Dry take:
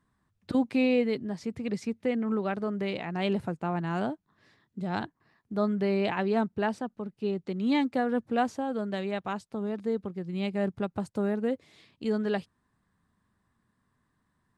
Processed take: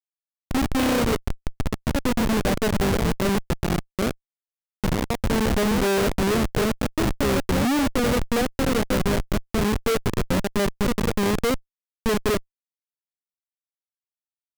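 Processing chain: low-pass sweep 4.3 kHz -> 510 Hz, 0.18–2.84 s; ever faster or slower copies 113 ms, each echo +2 st, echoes 2, each echo -6 dB; pre-echo 219 ms -22 dB; Schmitt trigger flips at -25 dBFS; trim +6.5 dB

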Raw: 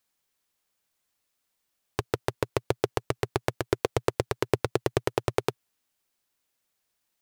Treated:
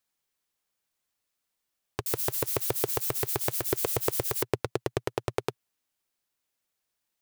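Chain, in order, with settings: 2.06–4.43 s: zero-crossing glitches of -22.5 dBFS; trim -4 dB

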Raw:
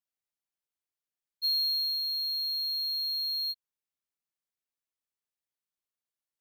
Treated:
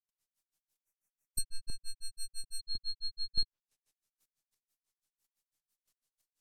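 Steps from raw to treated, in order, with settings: partial rectifier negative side -7 dB; time-frequency box 0.76–2.64 s, 2.7–5.5 kHz -21 dB; low-pass that closes with the level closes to 1.9 kHz, closed at -32.5 dBFS; tone controls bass +5 dB, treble +9 dB; square tremolo 2.9 Hz, depth 60%, duty 15%; granulator 117 ms, grains 6 per s, spray 100 ms, pitch spread up and down by 0 st; trim +15.5 dB

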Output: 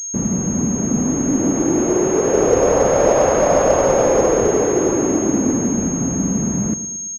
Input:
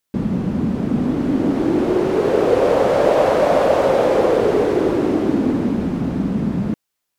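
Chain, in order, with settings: 2.35–4.49 s: bass shelf 71 Hz +12 dB; feedback delay 112 ms, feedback 50%, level -13.5 dB; class-D stage that switches slowly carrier 6.5 kHz

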